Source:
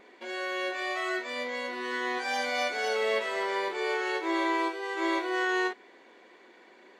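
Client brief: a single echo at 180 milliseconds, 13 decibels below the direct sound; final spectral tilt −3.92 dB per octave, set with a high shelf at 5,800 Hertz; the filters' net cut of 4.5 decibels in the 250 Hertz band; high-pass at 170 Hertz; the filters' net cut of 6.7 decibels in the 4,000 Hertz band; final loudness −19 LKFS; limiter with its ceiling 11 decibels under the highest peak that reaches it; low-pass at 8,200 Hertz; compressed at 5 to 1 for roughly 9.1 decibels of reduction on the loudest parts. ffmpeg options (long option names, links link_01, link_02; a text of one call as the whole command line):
ffmpeg -i in.wav -af "highpass=170,lowpass=8200,equalizer=frequency=250:width_type=o:gain=-7.5,equalizer=frequency=4000:width_type=o:gain=-6.5,highshelf=frequency=5800:gain=-6.5,acompressor=threshold=-37dB:ratio=5,alimiter=level_in=15.5dB:limit=-24dB:level=0:latency=1,volume=-15.5dB,aecho=1:1:180:0.224,volume=28dB" out.wav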